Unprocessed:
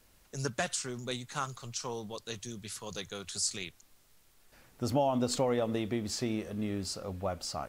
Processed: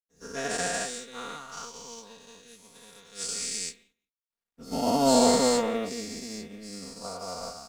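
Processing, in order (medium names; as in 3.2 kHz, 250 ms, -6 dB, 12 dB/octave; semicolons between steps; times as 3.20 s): every event in the spectrogram widened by 480 ms; comb 4.3 ms, depth 78%; crossover distortion -46.5 dBFS; echo from a far wall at 29 m, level -18 dB; upward expansion 2.5:1, over -38 dBFS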